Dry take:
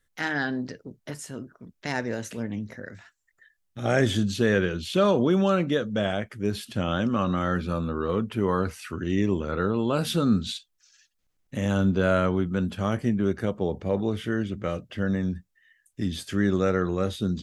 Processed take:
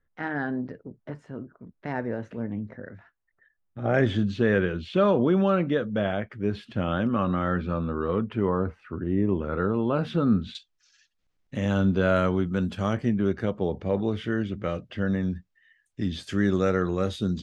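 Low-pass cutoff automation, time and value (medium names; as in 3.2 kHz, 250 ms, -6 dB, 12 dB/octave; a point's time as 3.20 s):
1.4 kHz
from 3.94 s 2.5 kHz
from 8.49 s 1.1 kHz
from 9.29 s 2 kHz
from 10.55 s 5 kHz
from 12.16 s 8.1 kHz
from 12.93 s 4.6 kHz
from 16.23 s 8 kHz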